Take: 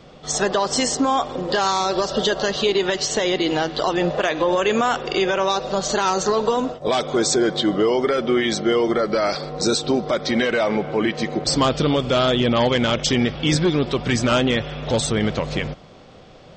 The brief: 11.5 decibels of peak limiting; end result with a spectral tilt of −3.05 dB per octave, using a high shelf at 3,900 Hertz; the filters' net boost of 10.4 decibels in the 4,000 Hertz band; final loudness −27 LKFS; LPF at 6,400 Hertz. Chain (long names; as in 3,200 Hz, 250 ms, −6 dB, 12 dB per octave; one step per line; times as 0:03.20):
low-pass filter 6,400 Hz
high-shelf EQ 3,900 Hz +8.5 dB
parametric band 4,000 Hz +8.5 dB
level −7 dB
brickwall limiter −17.5 dBFS